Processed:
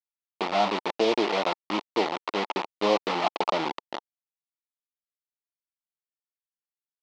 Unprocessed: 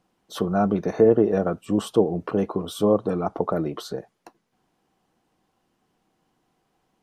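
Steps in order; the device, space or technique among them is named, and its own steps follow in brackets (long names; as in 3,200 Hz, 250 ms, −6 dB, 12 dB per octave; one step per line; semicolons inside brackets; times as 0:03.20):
0:02.49–0:03.82: low-shelf EQ 400 Hz +3 dB
hand-held game console (bit reduction 4 bits; loudspeaker in its box 430–4,500 Hz, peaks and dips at 460 Hz −7 dB, 890 Hz +6 dB, 1,600 Hz −9 dB)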